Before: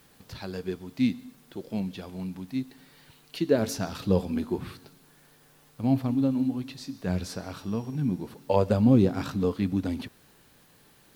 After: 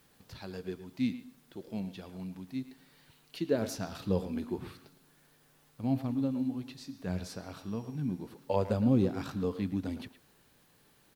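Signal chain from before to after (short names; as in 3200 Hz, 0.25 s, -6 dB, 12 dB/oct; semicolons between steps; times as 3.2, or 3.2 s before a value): speakerphone echo 0.11 s, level -12 dB; gain -6.5 dB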